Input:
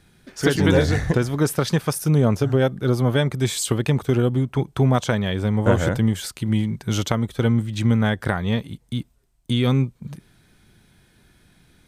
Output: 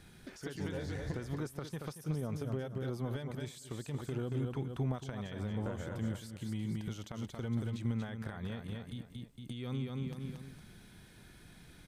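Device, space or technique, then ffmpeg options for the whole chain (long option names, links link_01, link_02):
de-esser from a sidechain: -filter_complex "[0:a]aecho=1:1:229|458|687:0.376|0.105|0.0295,asplit=2[link_01][link_02];[link_02]highpass=frequency=4700:poles=1,apad=whole_len=554021[link_03];[link_01][link_03]sidechaincompress=threshold=-56dB:ratio=4:attack=2.2:release=97,volume=-1dB"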